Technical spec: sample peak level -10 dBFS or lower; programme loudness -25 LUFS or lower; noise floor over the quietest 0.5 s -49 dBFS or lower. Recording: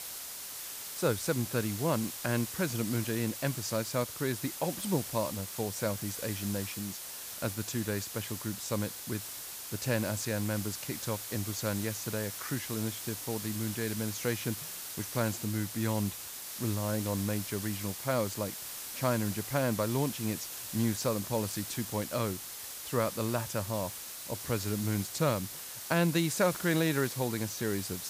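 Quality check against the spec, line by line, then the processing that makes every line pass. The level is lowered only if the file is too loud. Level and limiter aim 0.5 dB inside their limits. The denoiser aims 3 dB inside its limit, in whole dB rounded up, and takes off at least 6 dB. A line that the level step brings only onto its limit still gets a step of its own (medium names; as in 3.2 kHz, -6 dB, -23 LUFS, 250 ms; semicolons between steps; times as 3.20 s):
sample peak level -15.0 dBFS: pass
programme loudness -33.0 LUFS: pass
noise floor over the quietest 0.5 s -43 dBFS: fail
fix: noise reduction 9 dB, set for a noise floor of -43 dBFS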